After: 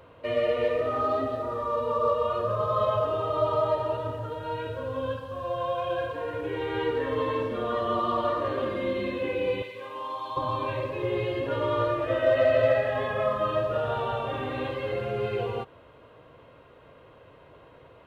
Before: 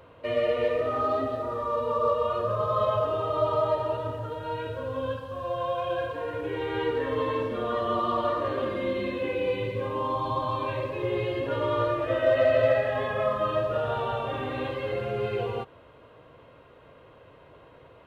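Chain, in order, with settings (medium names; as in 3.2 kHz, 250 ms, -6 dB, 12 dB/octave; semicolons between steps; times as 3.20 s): 9.62–10.37 s: high-pass 1.4 kHz 6 dB/octave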